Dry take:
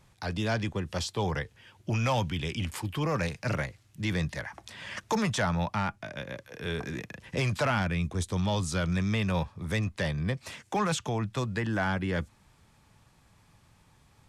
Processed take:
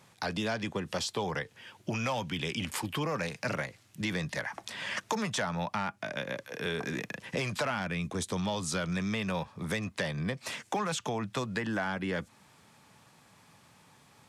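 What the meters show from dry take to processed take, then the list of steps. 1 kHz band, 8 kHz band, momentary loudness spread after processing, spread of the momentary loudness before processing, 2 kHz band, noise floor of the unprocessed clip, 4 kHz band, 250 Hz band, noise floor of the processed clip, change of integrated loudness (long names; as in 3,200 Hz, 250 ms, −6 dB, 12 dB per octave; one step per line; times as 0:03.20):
−2.0 dB, +0.5 dB, 5 LU, 11 LU, −0.5 dB, −63 dBFS, 0.0 dB, −3.0 dB, −62 dBFS, −3.0 dB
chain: high-pass filter 180 Hz 12 dB per octave
parametric band 340 Hz −3 dB 0.28 octaves
downward compressor 4 to 1, threshold −35 dBFS, peak gain reduction 10 dB
level +5 dB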